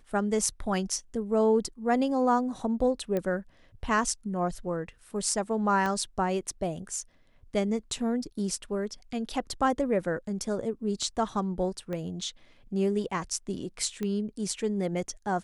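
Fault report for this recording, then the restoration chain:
0:03.17: click −18 dBFS
0:05.86: click −18 dBFS
0:11.93: click −23 dBFS
0:14.03: click −20 dBFS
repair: click removal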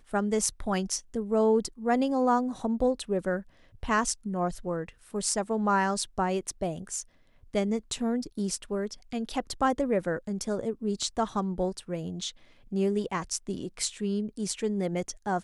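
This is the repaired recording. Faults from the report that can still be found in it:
0:05.86: click
0:11.93: click
0:14.03: click

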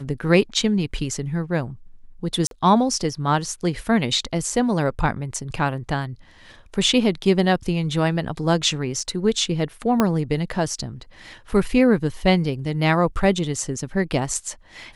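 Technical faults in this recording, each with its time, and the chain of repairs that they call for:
0:02.47–0:02.51: drop-out 42 ms
0:10.00: click −5 dBFS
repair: click removal
repair the gap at 0:02.47, 42 ms

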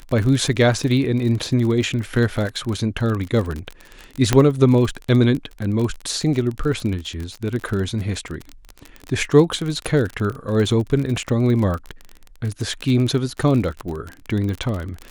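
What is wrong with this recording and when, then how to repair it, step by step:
surface crackle 39 per second −24 dBFS
0:04.33: click −2 dBFS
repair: click removal

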